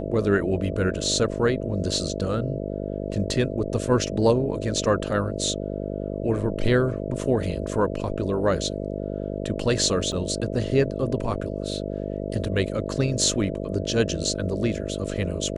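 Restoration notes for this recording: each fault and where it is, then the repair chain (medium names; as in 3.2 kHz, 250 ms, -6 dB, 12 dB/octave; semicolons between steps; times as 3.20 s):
buzz 50 Hz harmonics 13 -30 dBFS
10.12 s: dropout 5 ms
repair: de-hum 50 Hz, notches 13; interpolate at 10.12 s, 5 ms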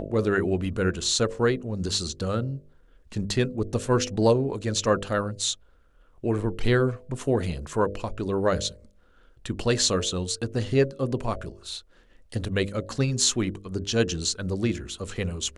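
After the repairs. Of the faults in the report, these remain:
nothing left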